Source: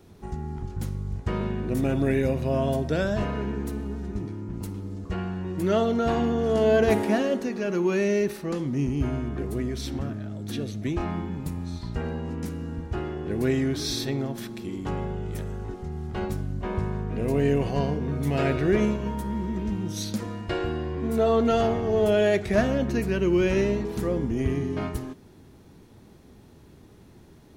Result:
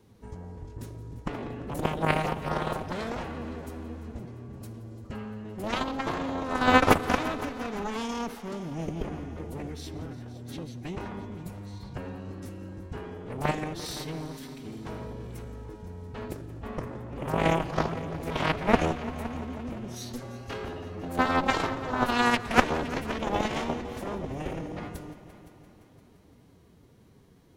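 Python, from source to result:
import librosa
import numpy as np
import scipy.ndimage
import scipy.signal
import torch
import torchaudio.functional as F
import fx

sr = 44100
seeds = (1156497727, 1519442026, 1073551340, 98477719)

y = fx.cheby_harmonics(x, sr, harmonics=(2, 3, 8), levels_db=(-10, -8, -43), full_scale_db=-9.0)
y = fx.echo_heads(y, sr, ms=172, heads='all three', feedback_pct=51, wet_db=-19.0)
y = fx.pitch_keep_formants(y, sr, semitones=2.5)
y = y * librosa.db_to_amplitude(8.0)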